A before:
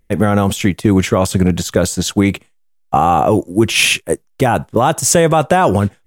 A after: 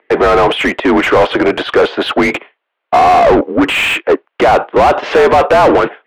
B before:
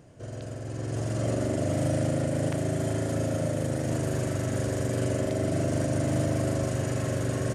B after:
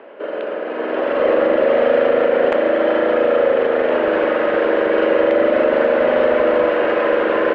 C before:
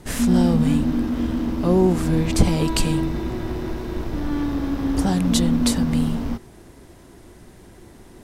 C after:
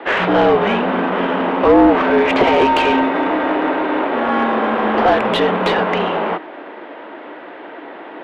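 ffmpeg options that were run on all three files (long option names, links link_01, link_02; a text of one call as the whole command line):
ffmpeg -i in.wav -filter_complex "[0:a]highpass=frequency=410:width_type=q:width=0.5412,highpass=frequency=410:width_type=q:width=1.307,lowpass=frequency=3300:width_type=q:width=0.5176,lowpass=frequency=3300:width_type=q:width=0.7071,lowpass=frequency=3300:width_type=q:width=1.932,afreqshift=-57,asplit=2[link_01][link_02];[link_02]highpass=frequency=720:poles=1,volume=30dB,asoftclip=type=tanh:threshold=-1.5dB[link_03];[link_01][link_03]amix=inputs=2:normalize=0,lowpass=frequency=1100:poles=1,volume=-6dB,volume=1.5dB" out.wav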